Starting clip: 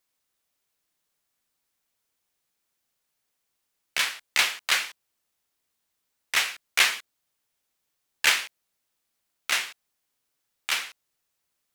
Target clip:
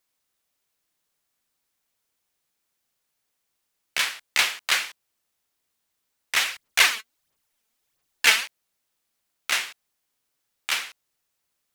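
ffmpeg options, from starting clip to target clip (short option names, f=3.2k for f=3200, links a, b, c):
-filter_complex "[0:a]asplit=3[a][b][c];[a]afade=t=out:st=6.4:d=0.02[d];[b]aphaser=in_gain=1:out_gain=1:delay=4.6:decay=0.58:speed=1.5:type=sinusoidal,afade=t=in:st=6.4:d=0.02,afade=t=out:st=8.45:d=0.02[e];[c]afade=t=in:st=8.45:d=0.02[f];[d][e][f]amix=inputs=3:normalize=0,volume=1dB"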